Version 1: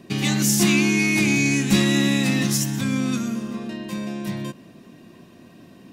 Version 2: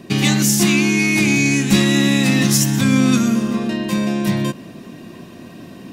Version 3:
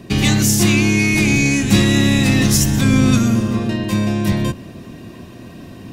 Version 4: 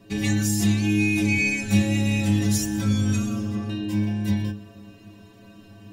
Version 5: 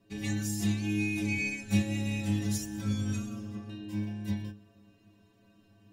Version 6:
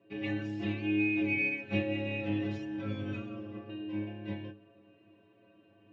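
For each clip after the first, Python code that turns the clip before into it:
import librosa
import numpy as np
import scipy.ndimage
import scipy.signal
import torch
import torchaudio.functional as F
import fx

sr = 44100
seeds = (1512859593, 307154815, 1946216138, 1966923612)

y1 = fx.rider(x, sr, range_db=4, speed_s=0.5)
y1 = y1 * 10.0 ** (6.0 / 20.0)
y2 = fx.octave_divider(y1, sr, octaves=1, level_db=-3.0)
y3 = fx.stiff_resonator(y2, sr, f0_hz=100.0, decay_s=0.41, stiffness=0.008)
y4 = fx.upward_expand(y3, sr, threshold_db=-32.0, expansion=1.5)
y4 = y4 * 10.0 ** (-6.5 / 20.0)
y5 = fx.cabinet(y4, sr, low_hz=120.0, low_slope=24, high_hz=2900.0, hz=(210.0, 340.0, 560.0, 2700.0), db=(-9, 7, 9, 5))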